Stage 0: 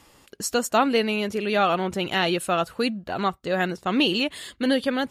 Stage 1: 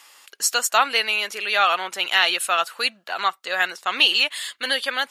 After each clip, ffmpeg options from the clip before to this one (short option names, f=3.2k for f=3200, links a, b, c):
-af "highpass=1.2k,volume=8dB"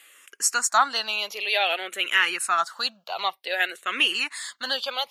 -filter_complex "[0:a]asplit=2[a][b];[b]afreqshift=-0.54[c];[a][c]amix=inputs=2:normalize=1"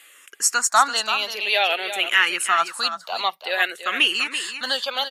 -af "aecho=1:1:335:0.316,volume=3dB"